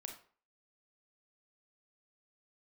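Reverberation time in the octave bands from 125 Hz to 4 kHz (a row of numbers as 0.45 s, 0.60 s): 0.40 s, 0.40 s, 0.45 s, 0.45 s, 0.40 s, 0.30 s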